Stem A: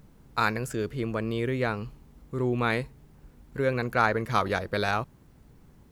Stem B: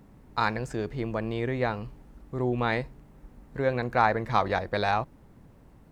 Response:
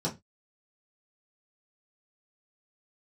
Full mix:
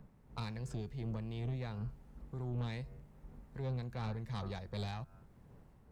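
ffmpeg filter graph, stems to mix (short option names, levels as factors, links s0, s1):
-filter_complex "[0:a]lowpass=1400,bandreject=f=95.83:t=h:w=4,bandreject=f=191.66:t=h:w=4,bandreject=f=287.49:t=h:w=4,bandreject=f=383.32:t=h:w=4,bandreject=f=479.15:t=h:w=4,bandreject=f=574.98:t=h:w=4,bandreject=f=670.81:t=h:w=4,bandreject=f=766.64:t=h:w=4,bandreject=f=862.47:t=h:w=4,bandreject=f=958.3:t=h:w=4,bandreject=f=1054.13:t=h:w=4,bandreject=f=1149.96:t=h:w=4,bandreject=f=1245.79:t=h:w=4,bandreject=f=1341.62:t=h:w=4,bandreject=f=1437.45:t=h:w=4,bandreject=f=1533.28:t=h:w=4,bandreject=f=1629.11:t=h:w=4,bandreject=f=1724.94:t=h:w=4,bandreject=f=1820.77:t=h:w=4,bandreject=f=1916.6:t=h:w=4,bandreject=f=2012.43:t=h:w=4,bandreject=f=2108.26:t=h:w=4,bandreject=f=2204.09:t=h:w=4,bandreject=f=2299.92:t=h:w=4,bandreject=f=2395.75:t=h:w=4,bandreject=f=2491.58:t=h:w=4,bandreject=f=2587.41:t=h:w=4,bandreject=f=2683.24:t=h:w=4,bandreject=f=2779.07:t=h:w=4,bandreject=f=2874.9:t=h:w=4,bandreject=f=2970.73:t=h:w=4,aeval=exprs='val(0)*pow(10,-18*(0.5-0.5*cos(2*PI*2.7*n/s))/20)':c=same,volume=0.841[s0];[1:a]dynaudnorm=f=140:g=5:m=1.68,volume=0.251[s1];[s0][s1]amix=inputs=2:normalize=0,equalizer=f=290:w=3.7:g=-6,acrossover=split=210|3000[s2][s3][s4];[s3]acompressor=threshold=0.00251:ratio=2[s5];[s2][s5][s4]amix=inputs=3:normalize=0,asoftclip=type=tanh:threshold=0.0224"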